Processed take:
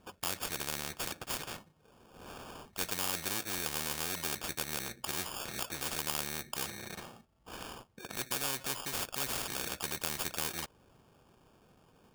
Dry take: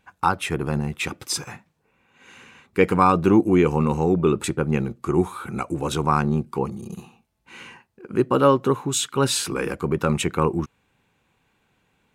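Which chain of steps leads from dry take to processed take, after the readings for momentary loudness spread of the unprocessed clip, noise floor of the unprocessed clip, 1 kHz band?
12 LU, -68 dBFS, -18.0 dB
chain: sample-and-hold 22×; spectrum-flattening compressor 4:1; trim -7.5 dB

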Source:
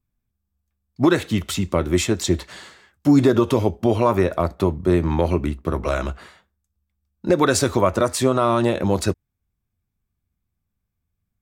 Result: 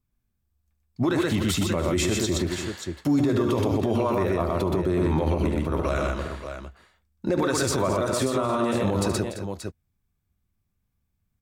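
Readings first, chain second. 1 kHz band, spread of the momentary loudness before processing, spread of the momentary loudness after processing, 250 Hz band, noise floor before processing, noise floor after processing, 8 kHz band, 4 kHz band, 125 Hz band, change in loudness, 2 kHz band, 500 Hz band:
-5.0 dB, 8 LU, 10 LU, -4.0 dB, -79 dBFS, -76 dBFS, -2.5 dB, -2.5 dB, -3.5 dB, -5.0 dB, -3.5 dB, -4.5 dB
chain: multi-tap echo 73/123/289/338/579 ms -11/-3.5/-18.5/-17/-13 dB; peak limiter -15 dBFS, peak gain reduction 13.5 dB

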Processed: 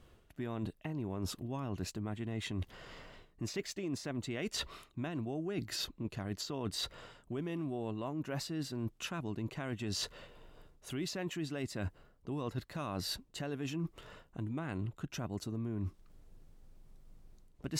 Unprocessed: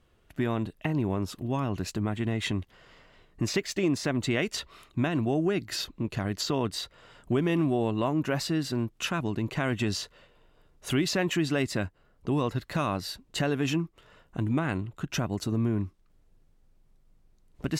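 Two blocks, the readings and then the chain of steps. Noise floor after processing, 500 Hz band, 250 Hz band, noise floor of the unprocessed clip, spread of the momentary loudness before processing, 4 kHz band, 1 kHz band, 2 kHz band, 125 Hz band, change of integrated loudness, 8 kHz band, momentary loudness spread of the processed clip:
-66 dBFS, -11.0 dB, -10.5 dB, -64 dBFS, 8 LU, -7.0 dB, -11.5 dB, -12.0 dB, -9.5 dB, -10.0 dB, -7.0 dB, 6 LU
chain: peaking EQ 2 kHz -2.5 dB 1.8 oct; reverse; compression 12:1, threshold -40 dBFS, peak gain reduction 19 dB; reverse; trim +5 dB

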